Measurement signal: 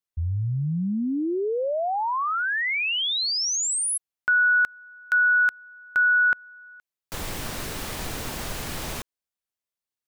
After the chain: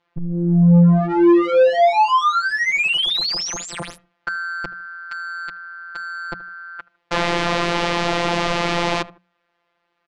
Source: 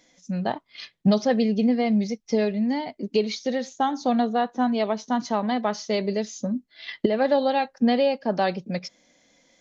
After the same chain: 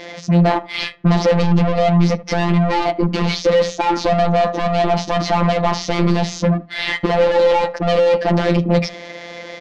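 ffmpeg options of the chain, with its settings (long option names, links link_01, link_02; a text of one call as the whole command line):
ffmpeg -i in.wav -filter_complex "[0:a]asplit=2[link_01][link_02];[link_02]highpass=frequency=720:poles=1,volume=36dB,asoftclip=type=tanh:threshold=-8dB[link_03];[link_01][link_03]amix=inputs=2:normalize=0,lowpass=frequency=1800:poles=1,volume=-6dB,afftfilt=real='hypot(re,im)*cos(PI*b)':imag='0':win_size=1024:overlap=0.75,asplit=2[link_04][link_05];[link_05]adelay=77,lowpass=frequency=2300:poles=1,volume=-21.5dB,asplit=2[link_06][link_07];[link_07]adelay=77,lowpass=frequency=2300:poles=1,volume=0.29[link_08];[link_04][link_06][link_08]amix=inputs=3:normalize=0,asplit=2[link_09][link_10];[link_10]acompressor=threshold=-27dB:ratio=10:attack=0.65:release=28:knee=6:detection=peak,volume=0.5dB[link_11];[link_09][link_11]amix=inputs=2:normalize=0,adynamicequalizer=threshold=0.0126:dfrequency=1600:dqfactor=2.8:tfrequency=1600:tqfactor=2.8:attack=5:release=100:ratio=0.4:range=3:mode=cutabove:tftype=bell,adynamicsmooth=sensitivity=4:basefreq=2700,lowpass=5300,lowshelf=frequency=350:gain=4,bandreject=frequency=60:width_type=h:width=6,bandreject=frequency=120:width_type=h:width=6,bandreject=frequency=180:width_type=h:width=6,volume=1.5dB" out.wav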